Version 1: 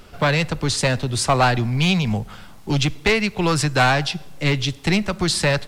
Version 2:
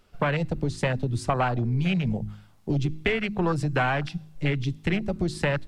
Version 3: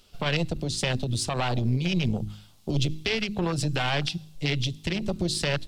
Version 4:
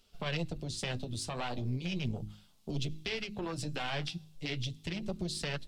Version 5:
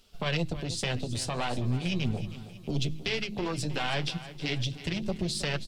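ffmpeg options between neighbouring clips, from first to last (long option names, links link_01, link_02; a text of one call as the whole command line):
ffmpeg -i in.wav -af "afwtdn=0.0794,acompressor=threshold=-21dB:ratio=6,bandreject=frequency=52.14:width_type=h:width=4,bandreject=frequency=104.28:width_type=h:width=4,bandreject=frequency=156.42:width_type=h:width=4,bandreject=frequency=208.56:width_type=h:width=4,bandreject=frequency=260.7:width_type=h:width=4,bandreject=frequency=312.84:width_type=h:width=4,bandreject=frequency=364.98:width_type=h:width=4" out.wav
ffmpeg -i in.wav -af "alimiter=limit=-19dB:level=0:latency=1:release=54,aeval=exprs='0.112*(cos(1*acos(clip(val(0)/0.112,-1,1)))-cos(1*PI/2))+0.0316*(cos(2*acos(clip(val(0)/0.112,-1,1)))-cos(2*PI/2))':channel_layout=same,highshelf=frequency=2500:width_type=q:width=1.5:gain=9" out.wav
ffmpeg -i in.wav -af "flanger=delay=4.4:depth=7.8:regen=-46:speed=0.37:shape=sinusoidal,volume=-5.5dB" out.wav
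ffmpeg -i in.wav -af "aecho=1:1:319|638|957|1276|1595:0.188|0.0923|0.0452|0.0222|0.0109,volume=5.5dB" out.wav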